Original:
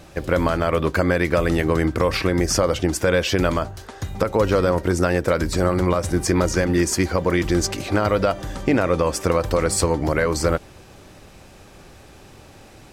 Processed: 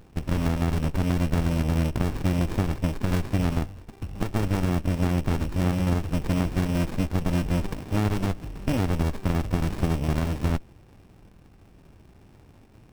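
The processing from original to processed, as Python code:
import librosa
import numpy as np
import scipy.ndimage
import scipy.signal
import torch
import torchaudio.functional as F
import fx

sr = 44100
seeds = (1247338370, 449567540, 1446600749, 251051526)

y = np.r_[np.sort(x[:len(x) // 16 * 16].reshape(-1, 16), axis=1).ravel(), x[len(x) // 16 * 16:]]
y = fx.running_max(y, sr, window=65)
y = y * 10.0 ** (-4.5 / 20.0)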